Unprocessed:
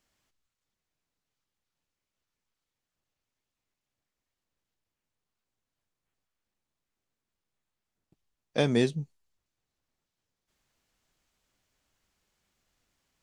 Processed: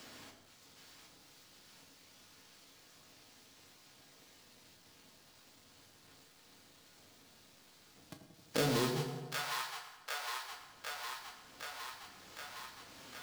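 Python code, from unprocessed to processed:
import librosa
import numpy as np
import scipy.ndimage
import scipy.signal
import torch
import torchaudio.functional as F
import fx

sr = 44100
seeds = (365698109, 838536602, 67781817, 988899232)

y = fx.halfwave_hold(x, sr)
y = fx.peak_eq(y, sr, hz=4500.0, db=6.0, octaves=1.0)
y = 10.0 ** (-16.5 / 20.0) * np.tanh(y / 10.0 ** (-16.5 / 20.0))
y = fx.echo_split(y, sr, split_hz=850.0, low_ms=88, high_ms=761, feedback_pct=52, wet_db=-8.0)
y = fx.rev_fdn(y, sr, rt60_s=0.82, lf_ratio=0.9, hf_ratio=0.9, size_ms=65.0, drr_db=2.0)
y = fx.band_squash(y, sr, depth_pct=70)
y = F.gain(torch.from_numpy(y), -2.0).numpy()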